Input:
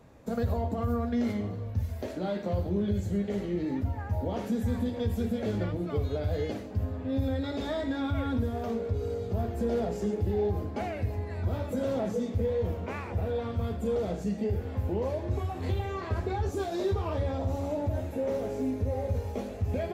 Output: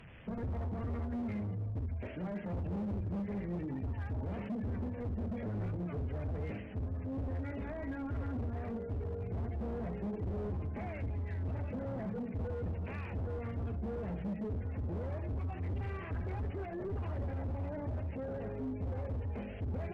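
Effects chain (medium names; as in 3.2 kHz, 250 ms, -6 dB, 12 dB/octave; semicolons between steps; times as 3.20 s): one-bit delta coder 16 kbps, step -44.5 dBFS; spectral gate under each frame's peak -30 dB strong; high-order bell 570 Hz -8.5 dB 2.8 oct; overload inside the chain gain 34 dB; Chebyshev shaper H 4 -34 dB, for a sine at -33.5 dBFS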